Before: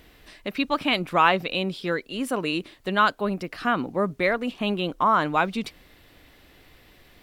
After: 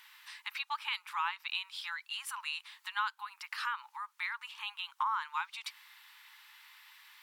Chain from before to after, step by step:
downward compressor 6 to 1, threshold −30 dBFS, peak gain reduction 16 dB
linear-phase brick-wall high-pass 820 Hz

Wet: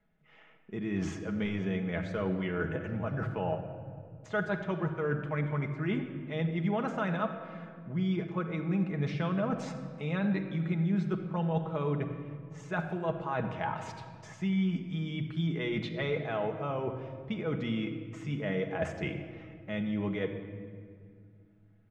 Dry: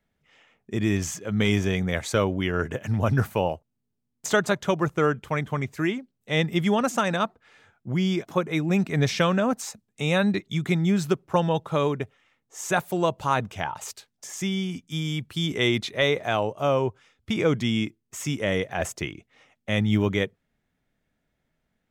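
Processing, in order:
low-pass filter 2,300 Hz 12 dB per octave
comb filter 6.2 ms, depth 41%
reversed playback
downward compressor 6 to 1, threshold −31 dBFS, peak gain reduction 15.5 dB
reversed playback
rectangular room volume 3,900 cubic metres, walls mixed, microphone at 1.4 metres

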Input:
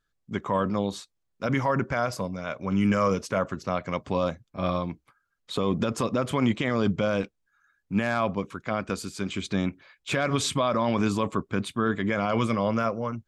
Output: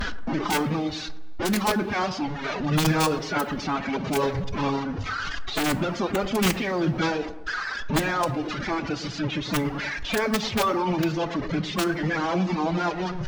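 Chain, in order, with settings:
linear delta modulator 32 kbit/s, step −25 dBFS
reverb reduction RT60 1.8 s
high-shelf EQ 3,500 Hz −11 dB
in parallel at +0.5 dB: brickwall limiter −26 dBFS, peak gain reduction 11.5 dB
on the sum: wrap-around overflow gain 13.5 dB
phase-vocoder pitch shift with formants kept +7.5 semitones
on a send: delay with a low-pass on its return 108 ms, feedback 46%, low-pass 1,300 Hz, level −12 dB
on the sum: coupled-rooms reverb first 0.33 s, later 2 s, from −20 dB, DRR 14.5 dB

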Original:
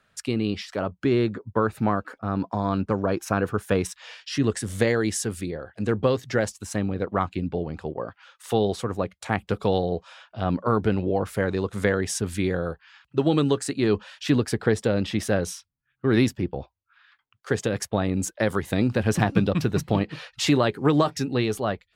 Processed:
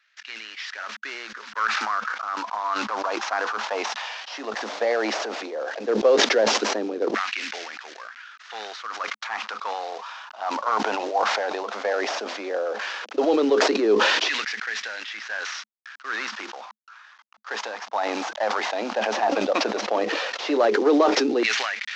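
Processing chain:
variable-slope delta modulation 32 kbit/s
0:05.01–0:05.85: transient designer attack −9 dB, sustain +6 dB
auto-filter high-pass saw down 0.14 Hz 380–2,000 Hz
Chebyshev high-pass with heavy ripple 210 Hz, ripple 3 dB
level that may fall only so fast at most 23 dB per second

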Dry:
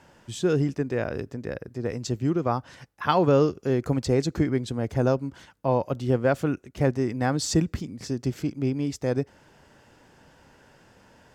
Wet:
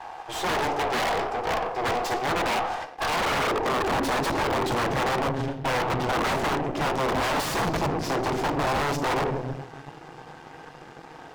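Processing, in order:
lower of the sound and its delayed copy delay 2.5 ms
high-pass filter sweep 720 Hz → 170 Hz, 0:02.82–0:04.38
brickwall limiter −21.5 dBFS, peak gain reduction 14.5 dB
low-shelf EQ 110 Hz +2.5 dB
mains-hum notches 60/120/180/240/300/360/420 Hz
convolution reverb RT60 0.90 s, pre-delay 6 ms, DRR 4 dB
wrap-around overflow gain 25.5 dB
harmonic generator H 6 −12 dB, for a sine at −25.5 dBFS
parametric band 860 Hz +7.5 dB 1.2 octaves
leveller curve on the samples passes 3
low-pass filter 3,400 Hz 6 dB per octave
level −2 dB

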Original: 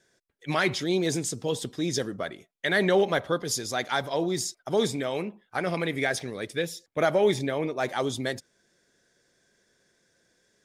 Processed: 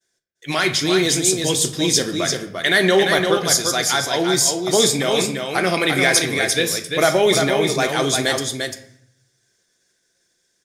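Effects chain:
downward expander −58 dBFS
high-shelf EQ 2,700 Hz +12 dB
in parallel at +0.5 dB: brickwall limiter −13.5 dBFS, peak gain reduction 7.5 dB
on the sum: speech leveller 2 s
single-tap delay 346 ms −5 dB
on a send at −6 dB: convolution reverb RT60 0.65 s, pre-delay 3 ms
on the sum: level −1 dB

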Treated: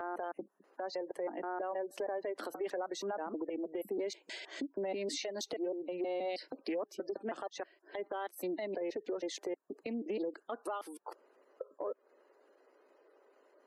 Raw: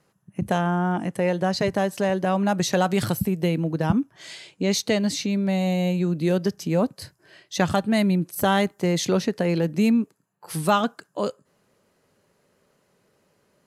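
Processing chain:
slices reordered back to front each 159 ms, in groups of 5
gain on a spectral selection 0:06.30–0:06.87, 1,900–5,700 Hz +8 dB
Butterworth high-pass 310 Hz 36 dB per octave
gate on every frequency bin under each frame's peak −20 dB strong
high-shelf EQ 2,300 Hz −12 dB
downward compressor 10 to 1, threshold −36 dBFS, peak gain reduction 19 dB
brickwall limiter −32 dBFS, peak gain reduction 9.5 dB
highs frequency-modulated by the lows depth 0.12 ms
level +3 dB

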